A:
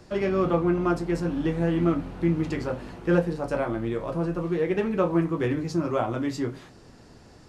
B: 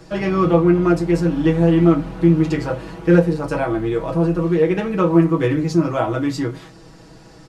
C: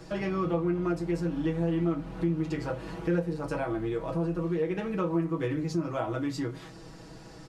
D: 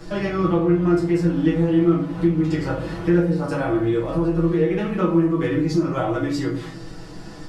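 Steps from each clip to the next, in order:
comb 6.2 ms, depth 83%; gain +5 dB
compressor 2:1, threshold -30 dBFS, peak gain reduction 12 dB; gain -3.5 dB
shoebox room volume 47 m³, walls mixed, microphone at 0.81 m; gain +4 dB

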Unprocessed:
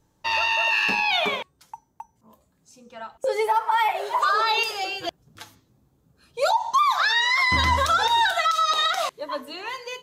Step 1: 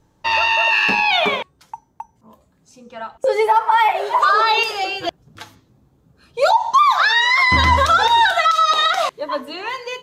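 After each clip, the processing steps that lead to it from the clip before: high shelf 5800 Hz -9 dB; gain +7 dB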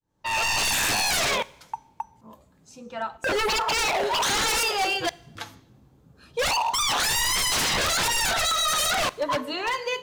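opening faded in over 0.69 s; wavefolder -19 dBFS; two-slope reverb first 0.76 s, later 1.9 s, from -18 dB, DRR 19.5 dB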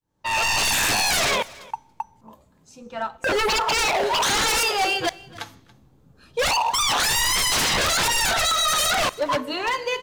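in parallel at -8 dB: backlash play -29.5 dBFS; on the sum: echo 0.281 s -22 dB

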